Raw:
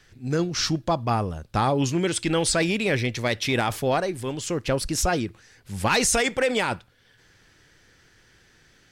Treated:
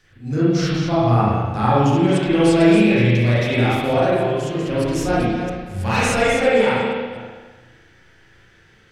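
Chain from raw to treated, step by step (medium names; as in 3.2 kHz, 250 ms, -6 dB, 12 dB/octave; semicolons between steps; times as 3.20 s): chunks repeated in reverse 239 ms, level -7.5 dB; harmonic-percussive split percussive -9 dB; spring tank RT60 1.3 s, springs 33/42 ms, chirp 70 ms, DRR -9 dB; trim -1 dB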